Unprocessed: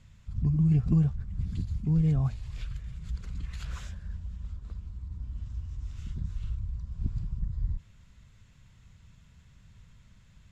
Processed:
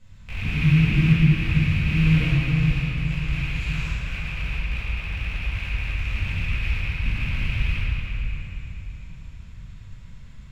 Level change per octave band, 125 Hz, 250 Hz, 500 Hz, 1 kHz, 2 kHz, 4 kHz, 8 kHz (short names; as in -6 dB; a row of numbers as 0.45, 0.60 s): +7.5 dB, +7.5 dB, +7.0 dB, +13.0 dB, +29.0 dB, +22.0 dB, n/a